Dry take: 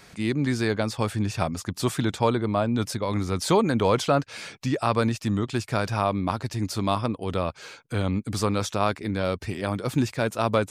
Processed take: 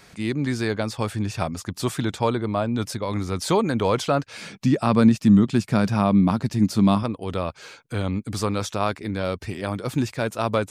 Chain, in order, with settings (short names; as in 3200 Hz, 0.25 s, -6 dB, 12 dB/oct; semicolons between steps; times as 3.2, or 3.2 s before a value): 4.41–7.03 bell 200 Hz +13.5 dB 0.99 oct